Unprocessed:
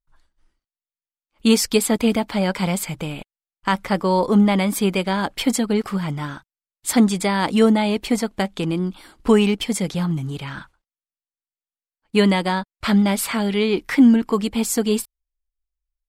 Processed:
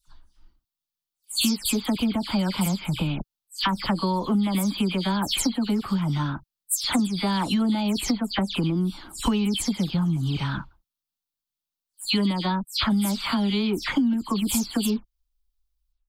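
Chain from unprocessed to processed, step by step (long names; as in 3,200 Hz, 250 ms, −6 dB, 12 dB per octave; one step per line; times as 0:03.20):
every frequency bin delayed by itself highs early, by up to 154 ms
octave-band graphic EQ 500/2,000/4,000/8,000 Hz −11/−10/+4/−5 dB
downward compressor 6 to 1, threshold −30 dBFS, peak gain reduction 17 dB
level +8.5 dB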